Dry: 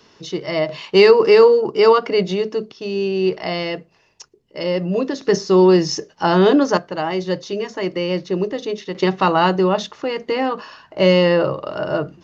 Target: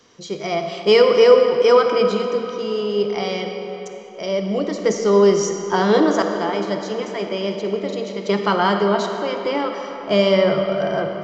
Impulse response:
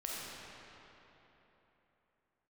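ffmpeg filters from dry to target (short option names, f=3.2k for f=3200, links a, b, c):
-filter_complex "[0:a]asplit=2[a][b];[1:a]atrim=start_sample=2205,asetrate=38367,aresample=44100[c];[b][c]afir=irnorm=-1:irlink=0,volume=-3.5dB[d];[a][d]amix=inputs=2:normalize=0,asetrate=48000,aresample=44100,volume=-6dB"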